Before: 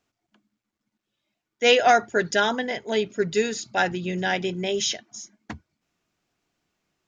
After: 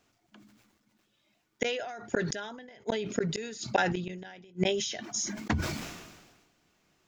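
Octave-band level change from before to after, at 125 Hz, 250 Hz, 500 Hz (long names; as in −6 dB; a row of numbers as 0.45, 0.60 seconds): −0.5, −4.0, −9.5 decibels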